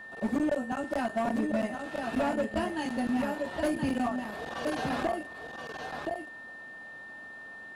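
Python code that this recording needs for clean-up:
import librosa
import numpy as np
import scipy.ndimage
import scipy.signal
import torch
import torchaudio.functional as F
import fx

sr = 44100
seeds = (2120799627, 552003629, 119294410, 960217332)

y = fx.fix_declip(x, sr, threshold_db=-23.5)
y = fx.notch(y, sr, hz=1800.0, q=30.0)
y = fx.fix_echo_inverse(y, sr, delay_ms=1023, level_db=-5.5)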